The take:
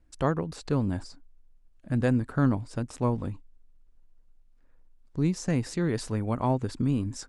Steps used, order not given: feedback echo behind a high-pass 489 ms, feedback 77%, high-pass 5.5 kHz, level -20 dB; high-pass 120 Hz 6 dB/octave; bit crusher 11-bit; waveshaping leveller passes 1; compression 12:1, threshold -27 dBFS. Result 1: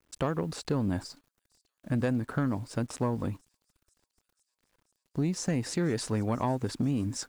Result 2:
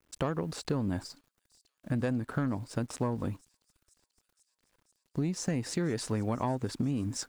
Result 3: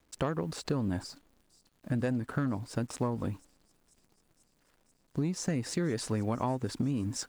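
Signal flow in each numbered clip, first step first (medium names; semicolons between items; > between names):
high-pass > compression > bit crusher > feedback echo behind a high-pass > waveshaping leveller; high-pass > bit crusher > waveshaping leveller > compression > feedback echo behind a high-pass; bit crusher > waveshaping leveller > high-pass > compression > feedback echo behind a high-pass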